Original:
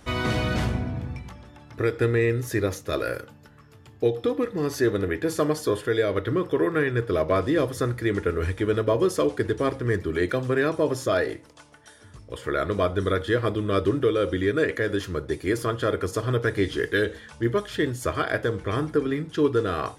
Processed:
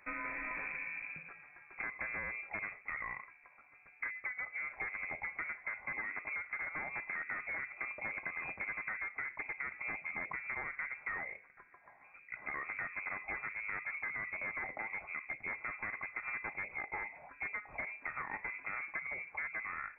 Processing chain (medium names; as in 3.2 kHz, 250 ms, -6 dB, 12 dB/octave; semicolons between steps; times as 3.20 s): one-sided wavefolder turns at -20 dBFS; high-pass 1.1 kHz 6 dB/octave; tilt EQ -3 dB/octave; compression, threshold -34 dBFS, peak gain reduction 10 dB; frequency inversion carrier 2.5 kHz; trim -3.5 dB